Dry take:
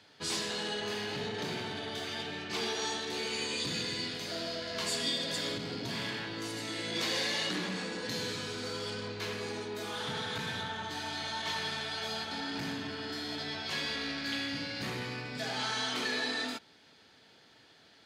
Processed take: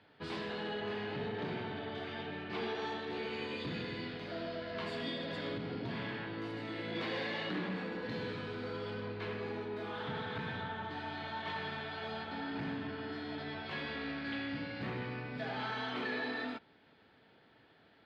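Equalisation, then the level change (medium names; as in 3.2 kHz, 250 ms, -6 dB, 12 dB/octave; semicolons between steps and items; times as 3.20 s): distance through air 430 m; 0.0 dB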